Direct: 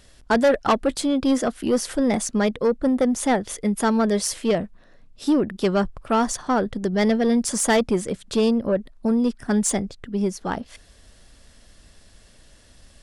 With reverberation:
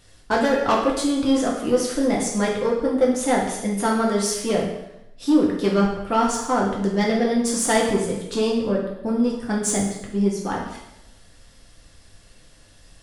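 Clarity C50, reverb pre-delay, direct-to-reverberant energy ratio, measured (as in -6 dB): 3.5 dB, 4 ms, -3.0 dB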